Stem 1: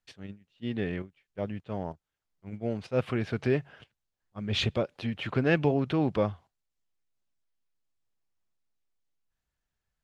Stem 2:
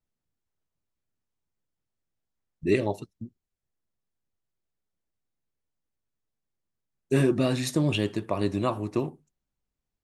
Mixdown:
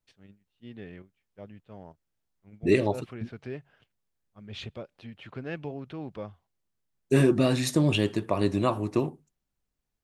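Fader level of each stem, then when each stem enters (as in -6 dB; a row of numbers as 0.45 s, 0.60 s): -11.5 dB, +1.5 dB; 0.00 s, 0.00 s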